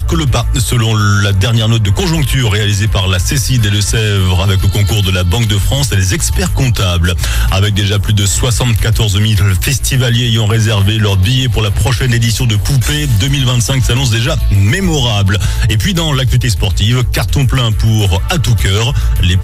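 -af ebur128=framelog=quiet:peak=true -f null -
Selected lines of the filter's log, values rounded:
Integrated loudness:
  I:         -11.7 LUFS
  Threshold: -21.7 LUFS
Loudness range:
  LRA:         0.8 LU
  Threshold: -31.7 LUFS
  LRA low:   -12.1 LUFS
  LRA high:  -11.3 LUFS
True peak:
  Peak:       -1.8 dBFS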